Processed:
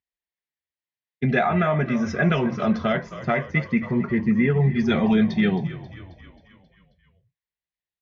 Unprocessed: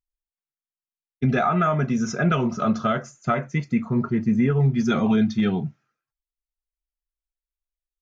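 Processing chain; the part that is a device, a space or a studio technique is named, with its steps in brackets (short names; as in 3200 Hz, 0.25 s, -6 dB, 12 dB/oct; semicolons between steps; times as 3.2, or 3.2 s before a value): frequency-shifting delay pedal into a guitar cabinet (frequency-shifting echo 0.268 s, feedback 61%, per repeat -45 Hz, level -15 dB; speaker cabinet 100–4500 Hz, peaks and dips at 120 Hz -4 dB, 270 Hz -4 dB, 1300 Hz -9 dB, 1900 Hz +9 dB); gain +2 dB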